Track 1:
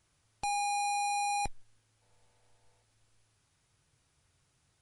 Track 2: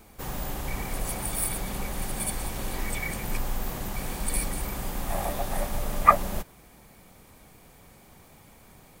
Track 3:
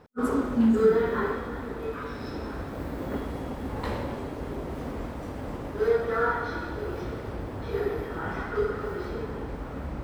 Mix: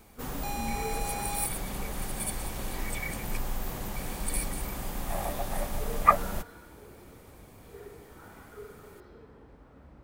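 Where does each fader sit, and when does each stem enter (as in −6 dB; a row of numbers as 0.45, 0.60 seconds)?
−5.5, −3.0, −18.5 decibels; 0.00, 0.00, 0.00 seconds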